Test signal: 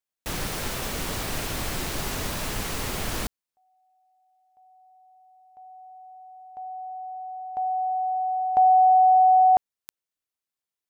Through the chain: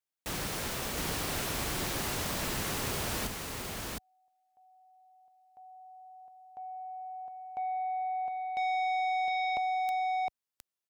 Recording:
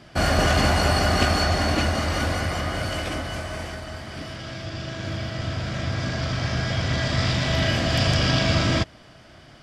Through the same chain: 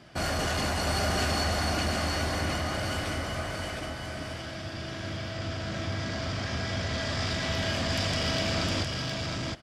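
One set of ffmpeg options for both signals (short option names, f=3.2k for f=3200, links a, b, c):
-filter_complex "[0:a]highpass=f=58:p=1,acrossover=split=5000[a][b];[a]asoftclip=type=tanh:threshold=-22dB[c];[c][b]amix=inputs=2:normalize=0,aecho=1:1:711:0.668,volume=-4dB"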